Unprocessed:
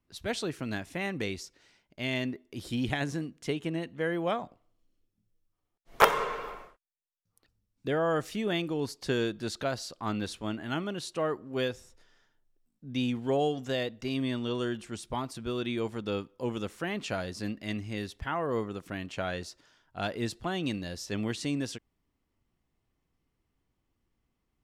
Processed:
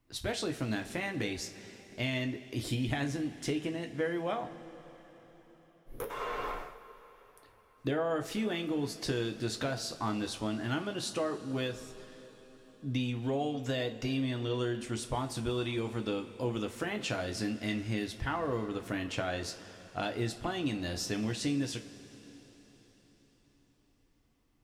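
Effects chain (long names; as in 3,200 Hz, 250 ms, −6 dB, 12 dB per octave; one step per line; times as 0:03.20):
downward compressor 5 to 1, threshold −36 dBFS, peak gain reduction 19.5 dB
gain on a spectral selection 0:05.66–0:06.10, 570–9,500 Hz −16 dB
coupled-rooms reverb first 0.25 s, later 4.8 s, from −20 dB, DRR 4 dB
level +4 dB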